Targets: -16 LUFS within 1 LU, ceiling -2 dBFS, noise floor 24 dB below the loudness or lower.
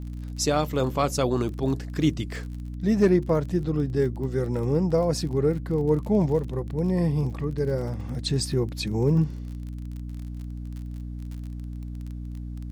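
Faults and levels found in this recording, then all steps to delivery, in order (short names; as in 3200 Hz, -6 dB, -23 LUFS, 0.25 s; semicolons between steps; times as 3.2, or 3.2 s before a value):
ticks 36/s; hum 60 Hz; harmonics up to 300 Hz; hum level -32 dBFS; loudness -25.5 LUFS; peak -10.0 dBFS; loudness target -16.0 LUFS
-> de-click; de-hum 60 Hz, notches 5; gain +9.5 dB; limiter -2 dBFS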